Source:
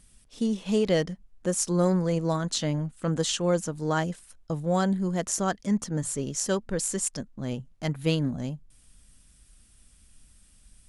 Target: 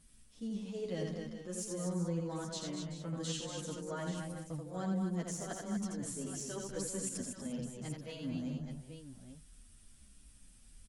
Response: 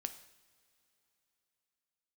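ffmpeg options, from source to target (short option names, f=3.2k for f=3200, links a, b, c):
-filter_complex "[0:a]deesser=0.4,equalizer=f=230:w=1.5:g=3.5,areverse,acompressor=threshold=-33dB:ratio=5,areverse,aecho=1:1:84|204|239|382|433|831:0.631|0.251|0.501|0.224|0.178|0.282,asplit=2[a][b];[b]adelay=9.5,afreqshift=-0.93[c];[a][c]amix=inputs=2:normalize=1,volume=-3dB"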